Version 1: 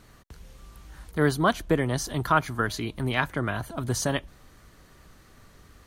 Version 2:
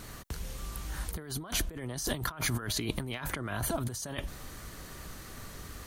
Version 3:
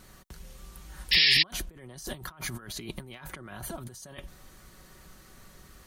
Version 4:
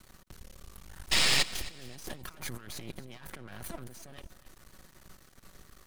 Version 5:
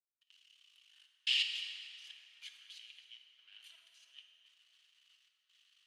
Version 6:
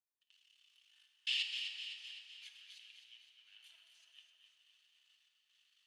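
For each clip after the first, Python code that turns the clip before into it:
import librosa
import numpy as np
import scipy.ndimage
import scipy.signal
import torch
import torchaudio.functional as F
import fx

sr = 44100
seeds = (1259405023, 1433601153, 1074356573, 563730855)

y1 = fx.high_shelf(x, sr, hz=6100.0, db=8.0)
y1 = fx.over_compress(y1, sr, threshold_db=-36.0, ratio=-1.0)
y2 = fx.spec_paint(y1, sr, seeds[0], shape='noise', start_s=1.11, length_s=0.32, low_hz=1700.0, high_hz=5500.0, level_db=-21.0)
y2 = y2 + 0.38 * np.pad(y2, (int(5.4 * sr / 1000.0), 0))[:len(y2)]
y2 = fx.upward_expand(y2, sr, threshold_db=-36.0, expansion=1.5)
y3 = np.maximum(y2, 0.0)
y3 = fx.echo_feedback(y3, sr, ms=265, feedback_pct=31, wet_db=-17.5)
y4 = fx.step_gate(y3, sr, bpm=71, pattern='.xxxx.xxxx', floor_db=-60.0, edge_ms=4.5)
y4 = fx.ladder_bandpass(y4, sr, hz=3100.0, resonance_pct=80)
y4 = fx.rev_plate(y4, sr, seeds[1], rt60_s=3.6, hf_ratio=0.5, predelay_ms=0, drr_db=2.5)
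y5 = fx.comb_fb(y4, sr, f0_hz=890.0, decay_s=0.15, harmonics='all', damping=0.0, mix_pct=70)
y5 = fx.echo_feedback(y5, sr, ms=255, feedback_pct=56, wet_db=-8.0)
y5 = F.gain(torch.from_numpy(y5), 5.0).numpy()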